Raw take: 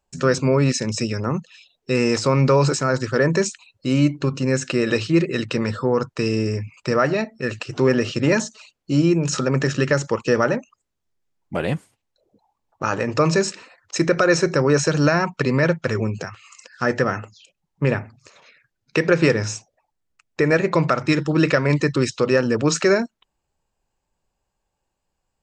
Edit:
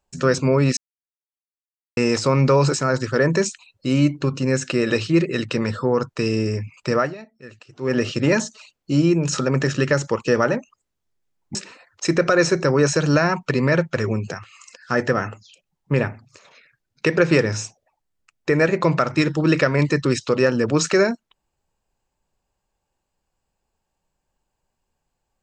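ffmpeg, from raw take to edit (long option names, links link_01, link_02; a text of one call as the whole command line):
ffmpeg -i in.wav -filter_complex "[0:a]asplit=6[link_01][link_02][link_03][link_04][link_05][link_06];[link_01]atrim=end=0.77,asetpts=PTS-STARTPTS,afade=type=out:start_time=0.766:duration=0.004:curve=hsin[link_07];[link_02]atrim=start=0.77:end=1.97,asetpts=PTS-STARTPTS,volume=0[link_08];[link_03]atrim=start=1.97:end=7.15,asetpts=PTS-STARTPTS,afade=type=in:duration=0.004:curve=hsin,afade=type=out:start_time=5:duration=0.18:silence=0.158489[link_09];[link_04]atrim=start=7.15:end=7.8,asetpts=PTS-STARTPTS,volume=-16dB[link_10];[link_05]atrim=start=7.8:end=11.552,asetpts=PTS-STARTPTS,afade=type=in:duration=0.18:silence=0.158489[link_11];[link_06]atrim=start=13.458[link_12];[link_07][link_08][link_09][link_10][link_11]concat=n=5:v=0:a=1[link_13];[link_13][link_12]acrossfade=duration=0.004:curve1=hsin:curve2=hsin" out.wav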